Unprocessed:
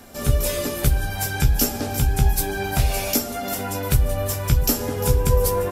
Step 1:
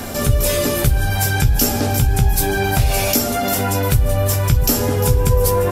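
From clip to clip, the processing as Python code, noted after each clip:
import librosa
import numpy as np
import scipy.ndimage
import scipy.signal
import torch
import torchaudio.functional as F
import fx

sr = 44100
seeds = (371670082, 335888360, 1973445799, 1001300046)

y = fx.peak_eq(x, sr, hz=110.0, db=6.0, octaves=0.45)
y = fx.env_flatten(y, sr, amount_pct=50)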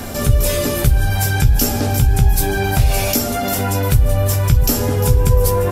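y = fx.low_shelf(x, sr, hz=130.0, db=4.5)
y = y * librosa.db_to_amplitude(-1.0)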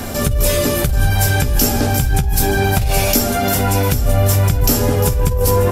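y = fx.over_compress(x, sr, threshold_db=-14.0, ratio=-1.0)
y = y + 10.0 ** (-11.0 / 20.0) * np.pad(y, (int(782 * sr / 1000.0), 0))[:len(y)]
y = y * librosa.db_to_amplitude(1.0)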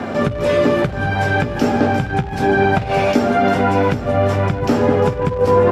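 y = fx.dmg_crackle(x, sr, seeds[0], per_s=140.0, level_db=-21.0)
y = fx.bandpass_edges(y, sr, low_hz=170.0, high_hz=2000.0)
y = y * librosa.db_to_amplitude(4.0)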